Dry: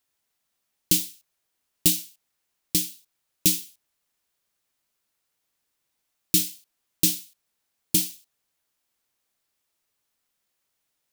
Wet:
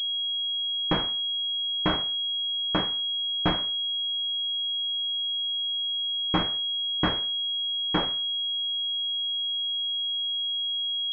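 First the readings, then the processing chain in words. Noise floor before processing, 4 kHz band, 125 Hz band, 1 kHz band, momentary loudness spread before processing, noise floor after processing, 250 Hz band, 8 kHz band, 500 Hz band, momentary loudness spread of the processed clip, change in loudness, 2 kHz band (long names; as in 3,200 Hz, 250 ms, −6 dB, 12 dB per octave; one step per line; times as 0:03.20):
−78 dBFS, +13.5 dB, +1.5 dB, can't be measured, 10 LU, −29 dBFS, +1.0 dB, below −35 dB, +10.5 dB, 1 LU, −1.5 dB, +7.0 dB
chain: switching amplifier with a slow clock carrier 3,300 Hz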